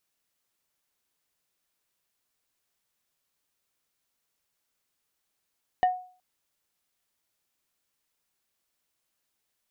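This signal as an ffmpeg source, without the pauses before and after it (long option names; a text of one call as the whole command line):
ffmpeg -f lavfi -i "aevalsrc='0.158*pow(10,-3*t/0.43)*sin(2*PI*733*t)+0.0422*pow(10,-3*t/0.143)*sin(2*PI*1832.5*t)+0.0112*pow(10,-3*t/0.081)*sin(2*PI*2932*t)+0.00299*pow(10,-3*t/0.062)*sin(2*PI*3665*t)+0.000794*pow(10,-3*t/0.045)*sin(2*PI*4764.5*t)':duration=0.37:sample_rate=44100" out.wav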